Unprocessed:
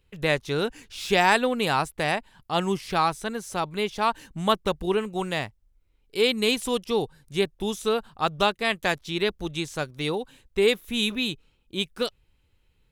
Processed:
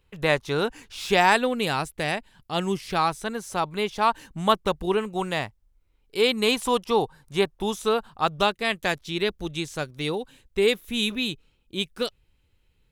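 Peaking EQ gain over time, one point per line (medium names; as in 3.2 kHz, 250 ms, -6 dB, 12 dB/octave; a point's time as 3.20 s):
peaking EQ 980 Hz 1.2 oct
1.01 s +5.5 dB
1.73 s -4.5 dB
2.54 s -4.5 dB
3.43 s +3 dB
6.17 s +3 dB
6.67 s +9.5 dB
7.41 s +9.5 dB
8.65 s -1.5 dB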